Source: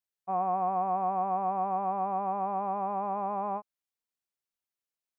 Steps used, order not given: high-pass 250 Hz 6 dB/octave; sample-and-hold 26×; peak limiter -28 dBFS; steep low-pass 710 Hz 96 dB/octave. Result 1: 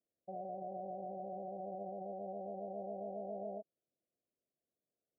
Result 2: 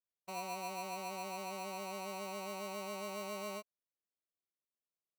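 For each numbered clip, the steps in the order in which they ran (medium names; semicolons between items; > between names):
sample-and-hold > high-pass > peak limiter > steep low-pass; peak limiter > steep low-pass > sample-and-hold > high-pass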